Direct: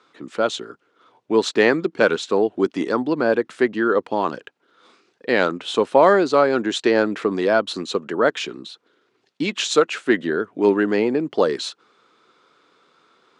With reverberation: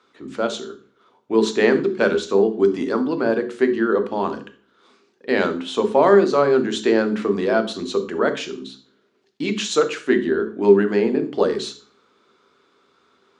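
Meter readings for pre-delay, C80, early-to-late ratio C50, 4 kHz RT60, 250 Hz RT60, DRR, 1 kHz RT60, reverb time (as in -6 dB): 3 ms, 17.5 dB, 12.0 dB, 0.40 s, 0.55 s, 6.5 dB, 0.40 s, 0.45 s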